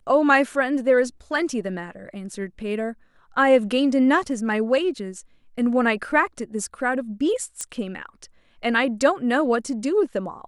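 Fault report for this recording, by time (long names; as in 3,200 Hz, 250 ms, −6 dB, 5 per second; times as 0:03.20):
0:07.61: click −15 dBFS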